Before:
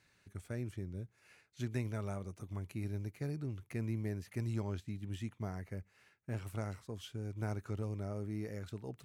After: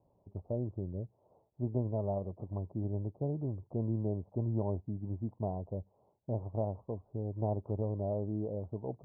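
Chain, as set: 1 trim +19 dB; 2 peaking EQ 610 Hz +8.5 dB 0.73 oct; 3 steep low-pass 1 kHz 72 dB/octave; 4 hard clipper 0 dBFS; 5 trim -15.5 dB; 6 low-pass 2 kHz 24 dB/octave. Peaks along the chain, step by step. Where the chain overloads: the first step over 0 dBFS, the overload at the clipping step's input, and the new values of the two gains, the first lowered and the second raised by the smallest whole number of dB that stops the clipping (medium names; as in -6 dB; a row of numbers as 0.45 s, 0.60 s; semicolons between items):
-7.0 dBFS, -5.0 dBFS, -5.5 dBFS, -5.5 dBFS, -21.0 dBFS, -21.0 dBFS; nothing clips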